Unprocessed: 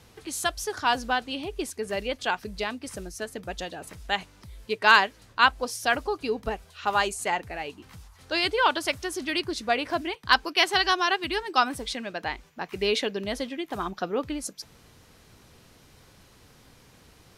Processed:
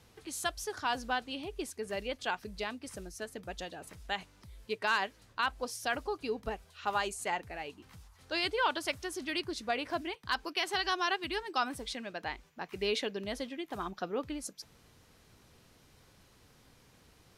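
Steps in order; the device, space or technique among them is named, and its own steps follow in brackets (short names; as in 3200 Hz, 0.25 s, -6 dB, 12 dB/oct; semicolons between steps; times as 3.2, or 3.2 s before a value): clipper into limiter (hard clip -6.5 dBFS, distortion -30 dB; limiter -12.5 dBFS, peak gain reduction 6 dB); gain -7 dB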